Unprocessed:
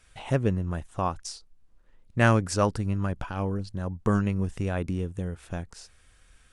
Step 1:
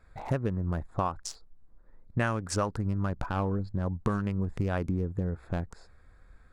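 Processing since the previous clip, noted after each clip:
adaptive Wiener filter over 15 samples
dynamic equaliser 1,200 Hz, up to +5 dB, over −39 dBFS, Q 0.99
downward compressor 12 to 1, threshold −28 dBFS, peak gain reduction 15.5 dB
level +3.5 dB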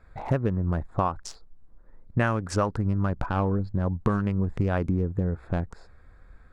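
high-shelf EQ 4,600 Hz −10 dB
level +4.5 dB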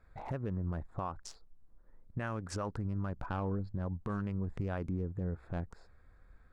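brickwall limiter −18.5 dBFS, peak gain reduction 8 dB
level −8.5 dB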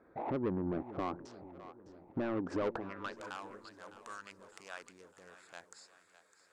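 band-pass filter sweep 310 Hz → 7,900 Hz, 0:02.62–0:03.21
mid-hump overdrive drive 22 dB, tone 5,600 Hz, clips at −32.5 dBFS
echo with a time of its own for lows and highs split 460 Hz, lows 442 ms, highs 607 ms, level −14 dB
level +7.5 dB

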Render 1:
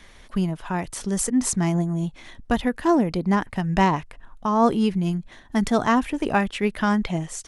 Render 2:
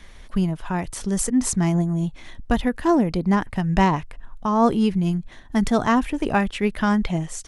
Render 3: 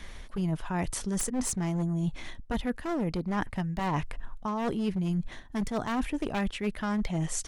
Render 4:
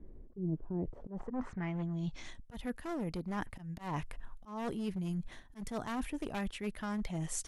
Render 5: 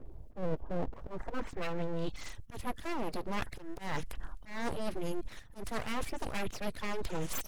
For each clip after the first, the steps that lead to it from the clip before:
low-shelf EQ 110 Hz +7.5 dB
wavefolder on the positive side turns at −17.5 dBFS; reversed playback; downward compressor 10 to 1, threshold −28 dBFS, peak gain reduction 16 dB; reversed playback; level +1.5 dB
low-pass filter sweep 360 Hz → 12,000 Hz, 0:00.77–0:02.53; volume swells 132 ms; level −7.5 dB
spectral magnitudes quantised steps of 30 dB; full-wave rectification; level +5 dB

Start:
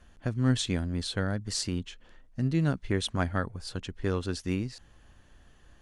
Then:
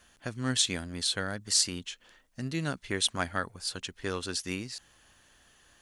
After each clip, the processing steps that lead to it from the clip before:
spectral tilt +3 dB per octave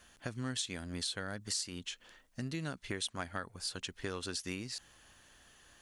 downward compressor 4 to 1, threshold −36 dBFS, peak gain reduction 13 dB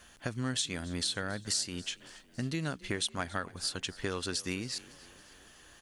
echo with shifted repeats 278 ms, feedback 59%, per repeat +31 Hz, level −21 dB
level +4.5 dB

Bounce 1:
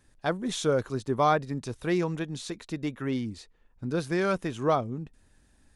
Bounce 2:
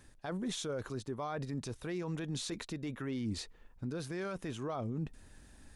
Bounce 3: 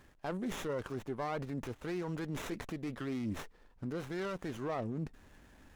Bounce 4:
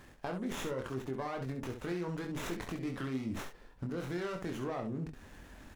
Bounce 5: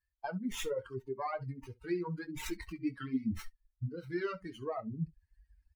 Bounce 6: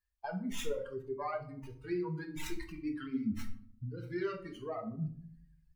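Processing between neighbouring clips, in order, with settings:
reversed playback; downward compressor 5 to 1, threshold −36 dBFS, peak gain reduction 16 dB; reversed playback; brickwall limiter −35.5 dBFS, peak gain reduction 10.5 dB; level +5.5 dB
low-shelf EQ 190 Hz −6.5 dB; windowed peak hold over 9 samples; level +2.5 dB
downward compressor, threshold −41 dBFS, peak gain reduction 8 dB; on a send: ambience of single reflections 23 ms −5.5 dB, 68 ms −7.5 dB; on the sum: level +5 dB
spectral dynamics exaggerated over time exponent 3; level +7.5 dB
rectangular room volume 690 cubic metres, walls furnished, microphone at 1.3 metres; level −2.5 dB

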